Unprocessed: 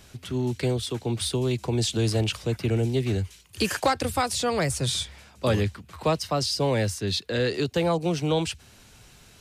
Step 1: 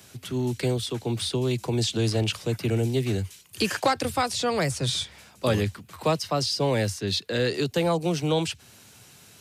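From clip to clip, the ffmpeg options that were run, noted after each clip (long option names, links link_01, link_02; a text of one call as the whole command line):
ffmpeg -i in.wav -filter_complex "[0:a]highpass=frequency=91:width=0.5412,highpass=frequency=91:width=1.3066,highshelf=frequency=8800:gain=9.5,acrossover=split=160|6300[link_01][link_02][link_03];[link_03]acompressor=threshold=-42dB:ratio=6[link_04];[link_01][link_02][link_04]amix=inputs=3:normalize=0" out.wav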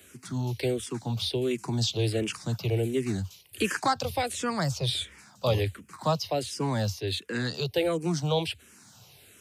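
ffmpeg -i in.wav -filter_complex "[0:a]asplit=2[link_01][link_02];[link_02]afreqshift=-1.4[link_03];[link_01][link_03]amix=inputs=2:normalize=1" out.wav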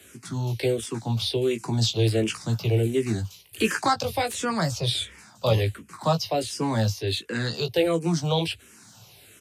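ffmpeg -i in.wav -filter_complex "[0:a]asplit=2[link_01][link_02];[link_02]adelay=18,volume=-7dB[link_03];[link_01][link_03]amix=inputs=2:normalize=0,acrossover=split=370|7200[link_04][link_05][link_06];[link_06]aeval=exprs='(mod(47.3*val(0)+1,2)-1)/47.3':channel_layout=same[link_07];[link_04][link_05][link_07]amix=inputs=3:normalize=0,aresample=32000,aresample=44100,volume=2.5dB" out.wav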